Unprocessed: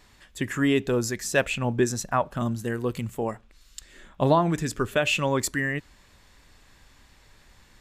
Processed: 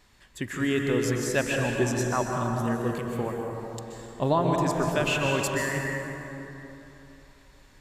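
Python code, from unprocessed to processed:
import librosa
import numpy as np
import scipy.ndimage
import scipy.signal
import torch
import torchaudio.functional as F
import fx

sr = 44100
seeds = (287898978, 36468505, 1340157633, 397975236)

y = fx.rev_plate(x, sr, seeds[0], rt60_s=3.3, hf_ratio=0.5, predelay_ms=115, drr_db=0.0)
y = y * 10.0 ** (-4.0 / 20.0)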